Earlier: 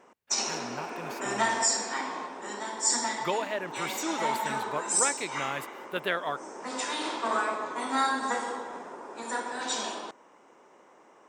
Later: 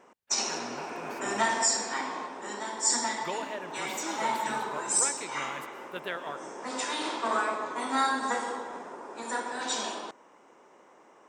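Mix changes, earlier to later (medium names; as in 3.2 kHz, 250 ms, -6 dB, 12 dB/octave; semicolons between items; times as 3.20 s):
speech -7.0 dB; reverb: on, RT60 2.5 s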